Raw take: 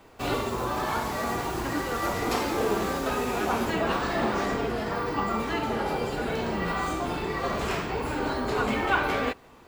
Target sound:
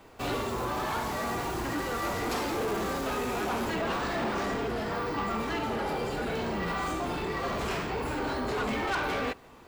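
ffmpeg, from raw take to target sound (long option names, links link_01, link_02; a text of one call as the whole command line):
ffmpeg -i in.wav -af "asoftclip=type=tanh:threshold=-26dB" out.wav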